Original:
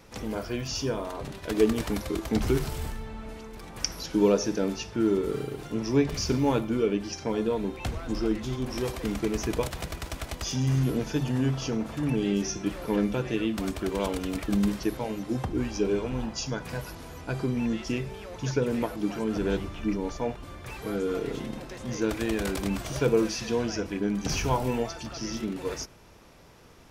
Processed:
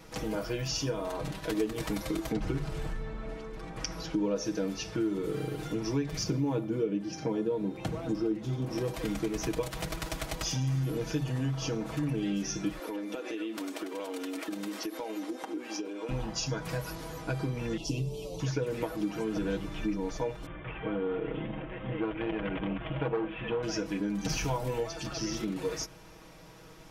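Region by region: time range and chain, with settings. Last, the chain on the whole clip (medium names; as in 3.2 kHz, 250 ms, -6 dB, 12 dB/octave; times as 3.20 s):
2.32–4.36 s: low-pass 10 kHz + treble shelf 3.3 kHz -10 dB
6.23–8.94 s: high-pass 110 Hz + tilt shelf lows +5.5 dB, about 740 Hz
12.79–16.09 s: brick-wall FIR high-pass 220 Hz + compression 12:1, threshold -34 dBFS
17.77–18.40 s: Butterworth band-stop 1.6 kHz, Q 0.63 + comb 7 ms, depth 84%
20.46–23.63 s: CVSD coder 64 kbps + steep low-pass 3.3 kHz 96 dB/octave + transformer saturation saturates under 820 Hz
whole clip: comb 6.3 ms, depth 74%; compression 3:1, threshold -30 dBFS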